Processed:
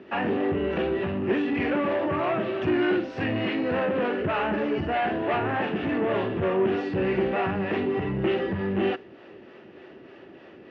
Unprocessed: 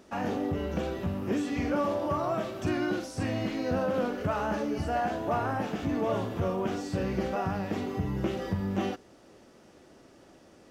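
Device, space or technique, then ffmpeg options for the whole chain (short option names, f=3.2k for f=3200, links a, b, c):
guitar amplifier with harmonic tremolo: -filter_complex "[0:a]acrossover=split=410[a][b];[a]aeval=exprs='val(0)*(1-0.5/2+0.5/2*cos(2*PI*3.3*n/s))':c=same[c];[b]aeval=exprs='val(0)*(1-0.5/2-0.5/2*cos(2*PI*3.3*n/s))':c=same[d];[c][d]amix=inputs=2:normalize=0,asoftclip=type=tanh:threshold=-30dB,highpass=100,equalizer=f=380:t=q:w=4:g=8,equalizer=f=1.8k:t=q:w=4:g=7,equalizer=f=2.7k:t=q:w=4:g=7,lowpass=f=3.4k:w=0.5412,lowpass=f=3.4k:w=1.3066,volume=8dB"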